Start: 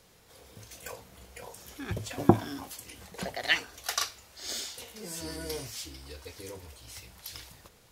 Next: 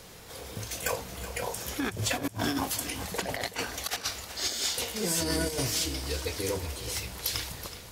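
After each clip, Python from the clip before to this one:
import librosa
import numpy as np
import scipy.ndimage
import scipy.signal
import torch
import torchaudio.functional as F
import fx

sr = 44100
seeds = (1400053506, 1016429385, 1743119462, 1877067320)

y = fx.over_compress(x, sr, threshold_db=-39.0, ratio=-0.5)
y = fx.echo_feedback(y, sr, ms=374, feedback_pct=51, wet_db=-13.0)
y = F.gain(torch.from_numpy(y), 7.0).numpy()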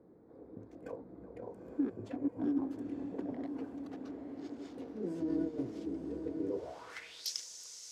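y = fx.wiener(x, sr, points=15)
y = fx.echo_diffused(y, sr, ms=926, feedback_pct=57, wet_db=-6.5)
y = fx.filter_sweep_bandpass(y, sr, from_hz=300.0, to_hz=6100.0, start_s=6.48, end_s=7.32, q=3.3)
y = F.gain(torch.from_numpy(y), 1.5).numpy()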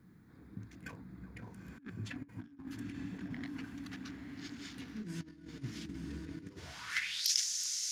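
y = fx.notch(x, sr, hz=8000.0, q=11.0)
y = fx.over_compress(y, sr, threshold_db=-39.0, ratio=-0.5)
y = fx.curve_eq(y, sr, hz=(180.0, 520.0, 1700.0), db=(0, -26, 5))
y = F.gain(torch.from_numpy(y), 5.5).numpy()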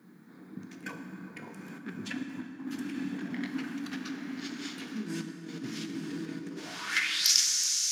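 y = scipy.signal.sosfilt(scipy.signal.butter(4, 190.0, 'highpass', fs=sr, output='sos'), x)
y = fx.notch(y, sr, hz=2000.0, q=27.0)
y = fx.rev_plate(y, sr, seeds[0], rt60_s=2.7, hf_ratio=0.55, predelay_ms=0, drr_db=4.5)
y = F.gain(torch.from_numpy(y), 7.5).numpy()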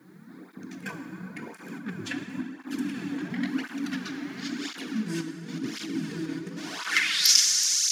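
y = fx.flanger_cancel(x, sr, hz=0.95, depth_ms=5.1)
y = F.gain(torch.from_numpy(y), 7.5).numpy()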